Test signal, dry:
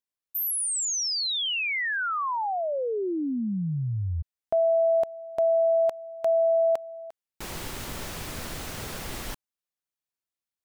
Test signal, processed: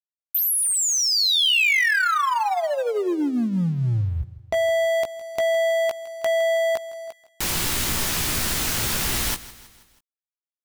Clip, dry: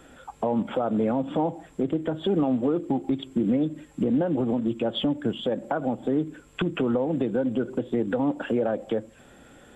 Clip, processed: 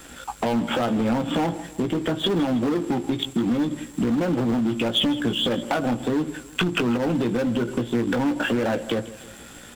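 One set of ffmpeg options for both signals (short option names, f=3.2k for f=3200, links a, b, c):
-filter_complex "[0:a]asplit=2[a][b];[b]adelay=17,volume=-6dB[c];[a][c]amix=inputs=2:normalize=0,asplit=2[d][e];[e]aeval=exprs='0.0562*(abs(mod(val(0)/0.0562+3,4)-2)-1)':c=same,volume=-6dB[f];[d][f]amix=inputs=2:normalize=0,equalizer=f=550:t=o:w=1.1:g=-4.5,acompressor=threshold=-26dB:ratio=3:attack=8.8:release=156,aeval=exprs='sgn(val(0))*max(abs(val(0))-0.002,0)':c=same,acrossover=split=3200[g][h];[h]acompressor=threshold=-34dB:ratio=4:attack=1:release=60[i];[g][i]amix=inputs=2:normalize=0,highshelf=f=2.8k:g=9,aecho=1:1:161|322|483|644:0.133|0.068|0.0347|0.0177,volume=5.5dB"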